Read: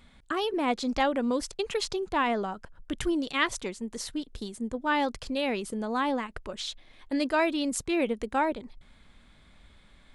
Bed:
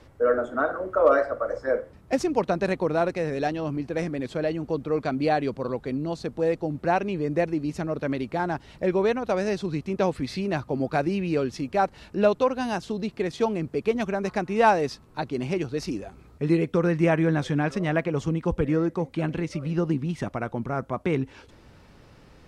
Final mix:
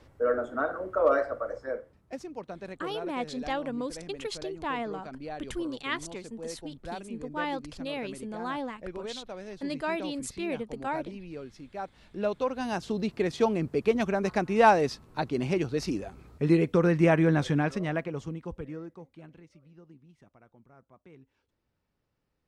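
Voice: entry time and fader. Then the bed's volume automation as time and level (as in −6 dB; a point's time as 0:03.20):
2.50 s, −6.0 dB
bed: 0:01.35 −4.5 dB
0:02.25 −16 dB
0:11.68 −16 dB
0:12.96 −0.5 dB
0:17.50 −0.5 dB
0:19.75 −28.5 dB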